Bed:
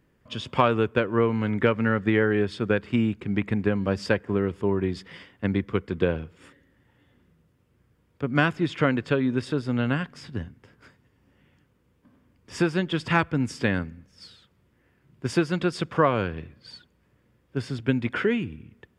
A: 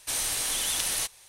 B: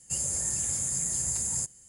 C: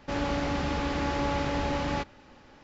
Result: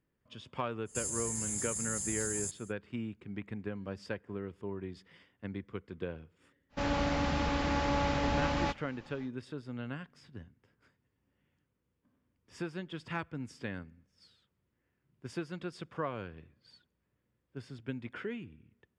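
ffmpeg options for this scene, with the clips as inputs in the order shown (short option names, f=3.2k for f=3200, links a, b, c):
-filter_complex "[0:a]volume=-15.5dB[a];[2:a]alimiter=level_in=1dB:limit=-24dB:level=0:latency=1:release=71,volume=-1dB[b];[3:a]equalizer=f=380:w=5.9:g=-9[c];[b]atrim=end=1.88,asetpts=PTS-STARTPTS,volume=-2.5dB,afade=t=in:d=0.05,afade=t=out:st=1.83:d=0.05,adelay=850[d];[c]atrim=end=2.63,asetpts=PTS-STARTPTS,volume=-1.5dB,afade=t=in:d=0.1,afade=t=out:st=2.53:d=0.1,adelay=6690[e];[a][d][e]amix=inputs=3:normalize=0"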